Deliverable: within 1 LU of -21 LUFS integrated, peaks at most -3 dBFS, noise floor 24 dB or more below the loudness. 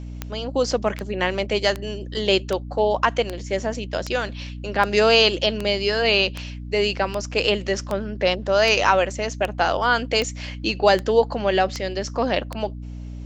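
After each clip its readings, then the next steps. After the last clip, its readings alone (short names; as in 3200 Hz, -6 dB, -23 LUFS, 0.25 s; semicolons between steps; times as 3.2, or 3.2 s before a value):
clicks 17; hum 60 Hz; harmonics up to 300 Hz; hum level -31 dBFS; loudness -21.5 LUFS; peak -2.5 dBFS; loudness target -21.0 LUFS
-> de-click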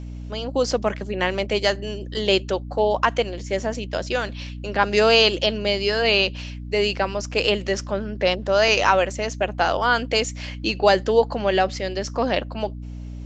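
clicks 0; hum 60 Hz; harmonics up to 300 Hz; hum level -31 dBFS
-> notches 60/120/180/240/300 Hz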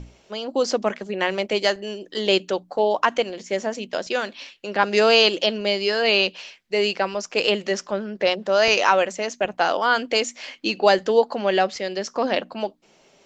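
hum none; loudness -22.0 LUFS; peak -3.0 dBFS; loudness target -21.0 LUFS
-> gain +1 dB; limiter -3 dBFS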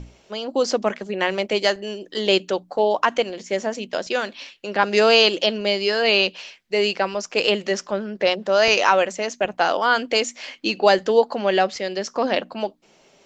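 loudness -21.0 LUFS; peak -3.0 dBFS; noise floor -56 dBFS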